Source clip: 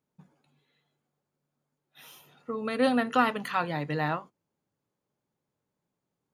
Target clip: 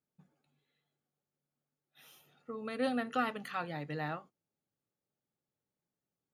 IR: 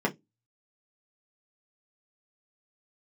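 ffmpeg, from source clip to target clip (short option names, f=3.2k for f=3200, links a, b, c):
-af "asuperstop=centerf=990:order=4:qfactor=6.8,volume=-8.5dB"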